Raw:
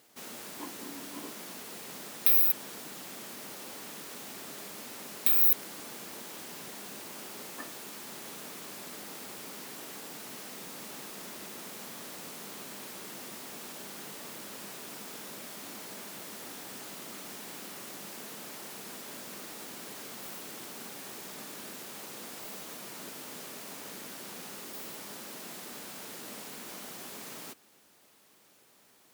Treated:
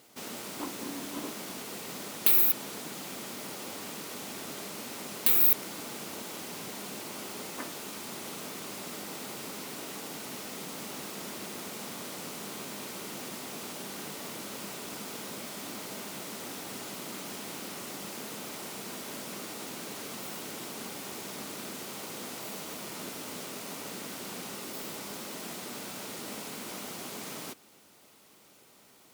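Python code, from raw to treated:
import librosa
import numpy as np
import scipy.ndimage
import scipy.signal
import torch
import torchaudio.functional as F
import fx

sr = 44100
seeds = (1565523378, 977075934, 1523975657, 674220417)

y = fx.low_shelf(x, sr, hz=330.0, db=3.0)
y = fx.notch(y, sr, hz=1700.0, q=11.0)
y = fx.doppler_dist(y, sr, depth_ms=0.28)
y = y * librosa.db_to_amplitude(4.0)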